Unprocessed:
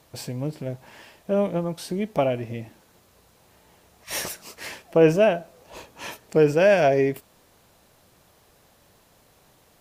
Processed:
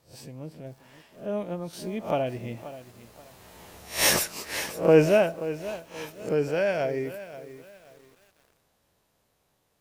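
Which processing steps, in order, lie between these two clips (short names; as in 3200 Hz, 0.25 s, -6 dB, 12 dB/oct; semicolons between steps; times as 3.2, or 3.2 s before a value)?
spectral swells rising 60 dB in 0.32 s; Doppler pass-by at 3.86, 9 m/s, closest 3.6 m; lo-fi delay 0.53 s, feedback 35%, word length 9-bit, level -14 dB; gain +8 dB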